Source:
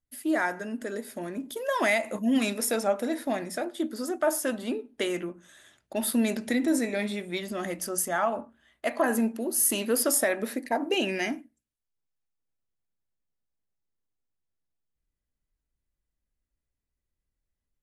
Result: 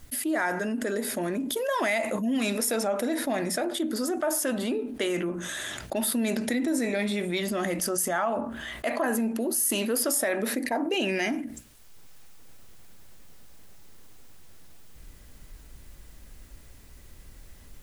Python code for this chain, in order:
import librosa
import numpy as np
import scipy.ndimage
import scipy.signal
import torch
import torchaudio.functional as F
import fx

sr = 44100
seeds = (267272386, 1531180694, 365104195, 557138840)

y = fx.env_flatten(x, sr, amount_pct=70)
y = F.gain(torch.from_numpy(y), -4.0).numpy()